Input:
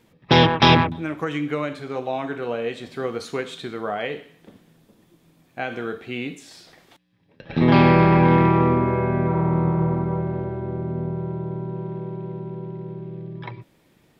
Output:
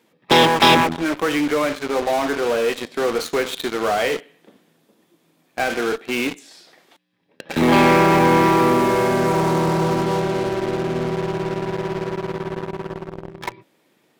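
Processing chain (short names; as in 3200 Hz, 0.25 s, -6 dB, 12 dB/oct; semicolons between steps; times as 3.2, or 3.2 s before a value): HPF 260 Hz 12 dB/oct; in parallel at -8 dB: fuzz box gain 39 dB, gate -35 dBFS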